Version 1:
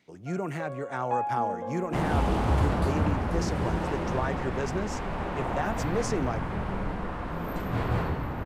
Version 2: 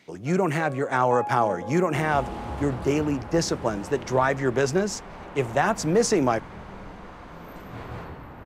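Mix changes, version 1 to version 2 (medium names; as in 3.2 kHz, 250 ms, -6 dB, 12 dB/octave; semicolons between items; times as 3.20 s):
speech +10.5 dB; second sound -7.0 dB; master: add bass shelf 230 Hz -4.5 dB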